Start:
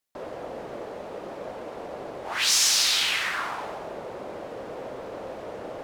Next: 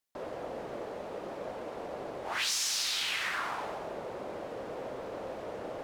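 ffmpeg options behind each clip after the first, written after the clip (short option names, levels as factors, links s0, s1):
-af "acompressor=threshold=0.0501:ratio=5,volume=0.708"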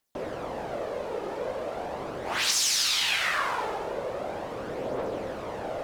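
-af "aphaser=in_gain=1:out_gain=1:delay=2.4:decay=0.37:speed=0.4:type=triangular,volume=2"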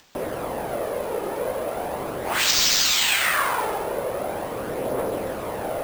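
-af "acompressor=mode=upward:threshold=0.00447:ratio=2.5,acrusher=samples=4:mix=1:aa=0.000001,volume=1.88"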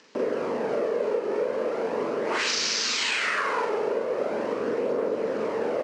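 -filter_complex "[0:a]highpass=230,equalizer=f=230:t=q:w=4:g=7,equalizer=f=440:t=q:w=4:g=9,equalizer=f=750:t=q:w=4:g=-8,equalizer=f=3500:t=q:w=4:g=-7,lowpass=f=6000:w=0.5412,lowpass=f=6000:w=1.3066,acompressor=threshold=0.0562:ratio=6,asplit=2[s0][s1];[s1]adelay=42,volume=0.794[s2];[s0][s2]amix=inputs=2:normalize=0"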